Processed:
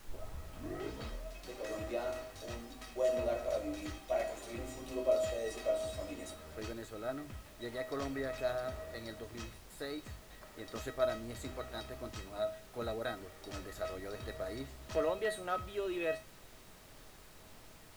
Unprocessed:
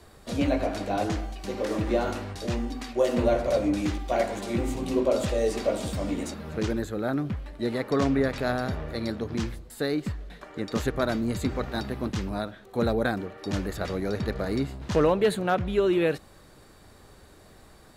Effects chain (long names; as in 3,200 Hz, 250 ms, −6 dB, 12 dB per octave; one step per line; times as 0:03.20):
turntable start at the beginning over 1.54 s
parametric band 180 Hz −11 dB 0.73 octaves
mains-hum notches 50/100/150/200/250 Hz
tuned comb filter 640 Hz, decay 0.26 s, harmonics all, mix 90%
background noise pink −62 dBFS
level +5 dB